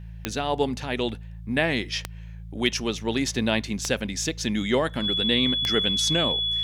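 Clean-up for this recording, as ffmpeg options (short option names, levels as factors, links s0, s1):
-af "adeclick=t=4,bandreject=f=55.4:t=h:w=4,bandreject=f=110.8:t=h:w=4,bandreject=f=166.2:t=h:w=4,bandreject=f=3400:w=30"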